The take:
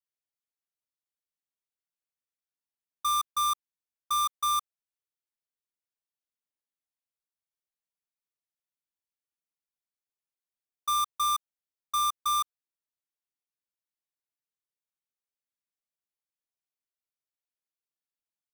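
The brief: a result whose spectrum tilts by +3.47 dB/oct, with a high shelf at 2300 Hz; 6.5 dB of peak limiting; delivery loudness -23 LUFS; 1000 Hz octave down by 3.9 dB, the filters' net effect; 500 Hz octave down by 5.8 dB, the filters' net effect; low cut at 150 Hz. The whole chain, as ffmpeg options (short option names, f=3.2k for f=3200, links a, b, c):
-af "highpass=150,equalizer=f=500:t=o:g=-6.5,equalizer=f=1k:t=o:g=-6,highshelf=f=2.3k:g=8,volume=10dB,alimiter=limit=-10.5dB:level=0:latency=1"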